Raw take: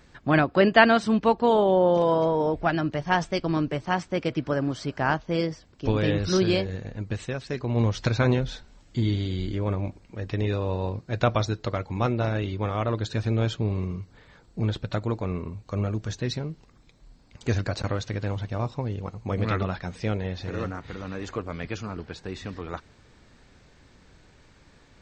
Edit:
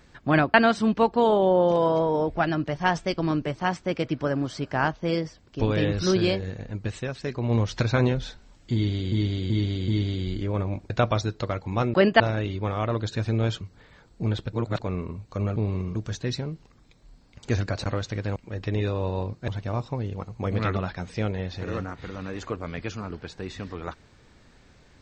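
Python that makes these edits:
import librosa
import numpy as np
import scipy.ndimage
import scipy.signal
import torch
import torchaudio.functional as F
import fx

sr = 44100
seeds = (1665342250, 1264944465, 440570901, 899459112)

y = fx.edit(x, sr, fx.move(start_s=0.54, length_s=0.26, to_s=12.18),
    fx.repeat(start_s=9.0, length_s=0.38, count=4),
    fx.move(start_s=10.02, length_s=1.12, to_s=18.34),
    fx.move(start_s=13.59, length_s=0.39, to_s=15.93),
    fx.reverse_span(start_s=14.9, length_s=0.27), tone=tone)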